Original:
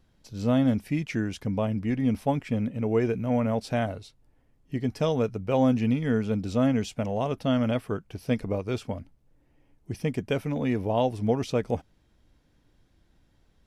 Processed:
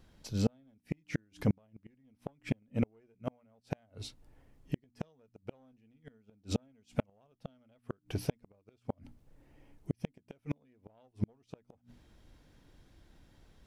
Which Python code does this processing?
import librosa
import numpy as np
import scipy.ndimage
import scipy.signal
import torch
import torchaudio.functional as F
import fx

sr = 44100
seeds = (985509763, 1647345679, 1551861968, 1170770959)

y = fx.diode_clip(x, sr, knee_db=-18.5)
y = fx.hum_notches(y, sr, base_hz=60, count=5)
y = fx.gate_flip(y, sr, shuts_db=-22.0, range_db=-42)
y = y * librosa.db_to_amplitude(4.0)